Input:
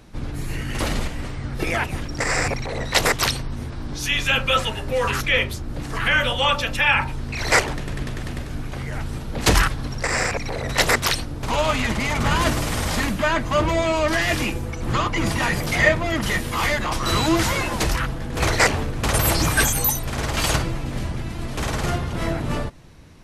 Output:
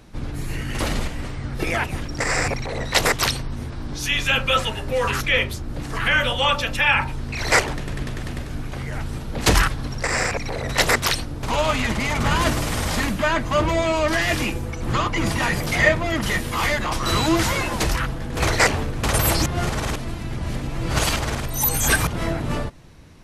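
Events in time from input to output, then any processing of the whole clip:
19.46–22.07 reverse

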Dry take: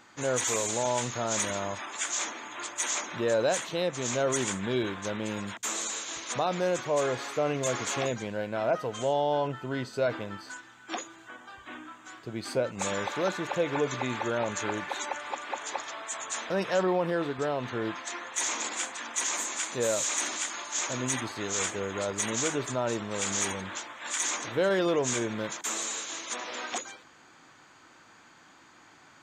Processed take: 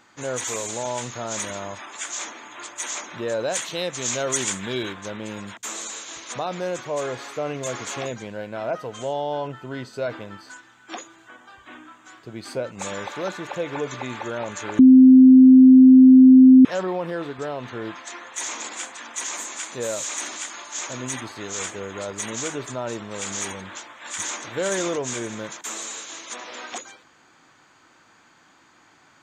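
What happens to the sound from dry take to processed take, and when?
3.55–4.93 high shelf 2000 Hz +8.5 dB
14.79–16.65 bleep 259 Hz -6 dBFS
23.66–24.45 echo throw 0.52 s, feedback 25%, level -1 dB

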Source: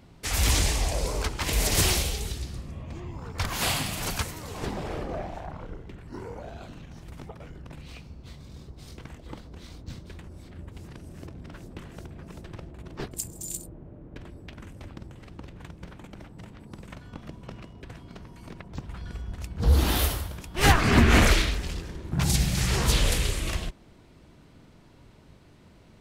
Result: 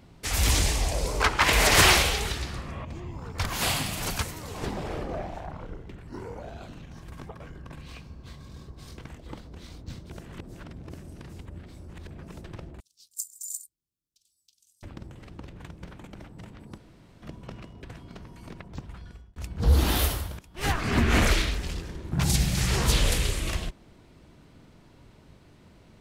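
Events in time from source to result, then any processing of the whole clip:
1.2–2.85 bell 1400 Hz +13.5 dB 2.8 oct
6.93–8.99 small resonant body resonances 1100/1600 Hz, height 11 dB
10.1–12.07 reverse
12.8–14.83 inverse Chebyshev high-pass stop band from 2000 Hz, stop band 50 dB
16.78–17.22 room tone
18.41–19.36 fade out equal-power
20.39–21.7 fade in, from -13.5 dB

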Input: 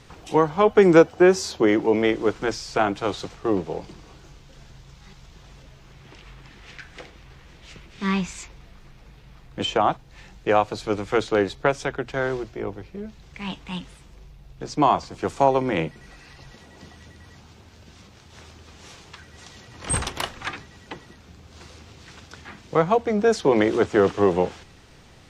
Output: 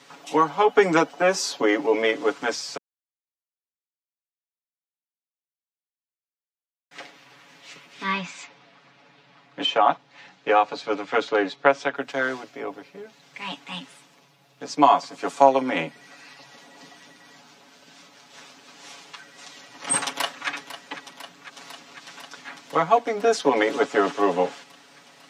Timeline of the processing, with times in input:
2.77–6.91 mute
8.03–11.96 LPF 4500 Hz
20.05–20.49 echo throw 0.5 s, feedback 80%, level -12.5 dB
whole clip: HPF 230 Hz 24 dB/oct; bell 370 Hz -11 dB 0.45 oct; comb 7.1 ms, depth 89%

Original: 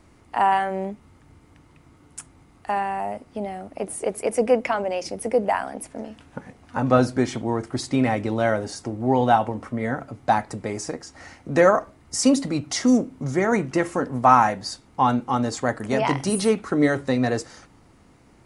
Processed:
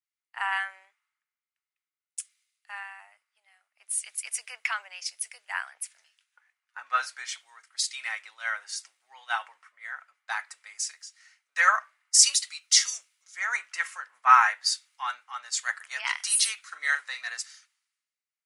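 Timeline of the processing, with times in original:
16.67–17.27 doubler 41 ms -9 dB
whole clip: HPF 1500 Hz 24 dB/oct; three-band expander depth 100%

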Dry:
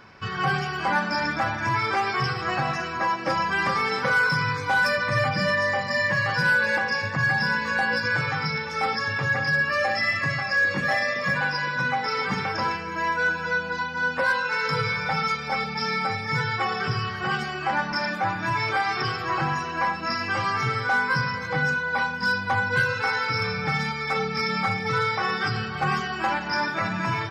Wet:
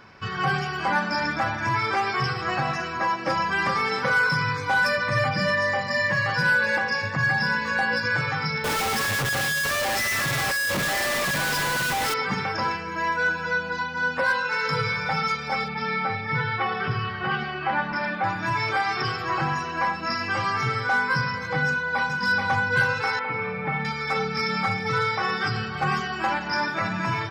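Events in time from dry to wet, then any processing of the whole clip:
8.64–12.14 Schmitt trigger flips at -38.5 dBFS
15.68–18.24 LPF 3900 Hz 24 dB/oct
21.66–22.12 echo throw 0.43 s, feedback 60%, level -3 dB
23.19–23.85 speaker cabinet 110–2600 Hz, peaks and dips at 110 Hz -7 dB, 610 Hz +4 dB, 1500 Hz -7 dB

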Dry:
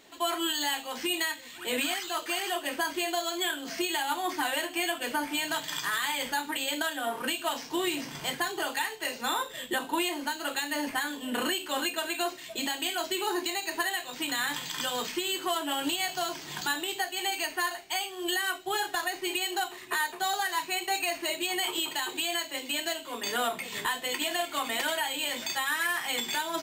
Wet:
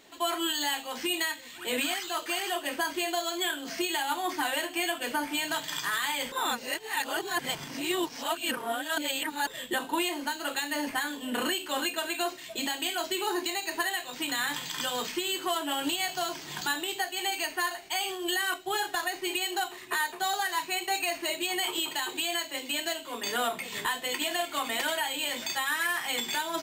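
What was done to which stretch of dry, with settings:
6.32–9.47 reverse
17.8–18.54 sustainer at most 44 dB/s

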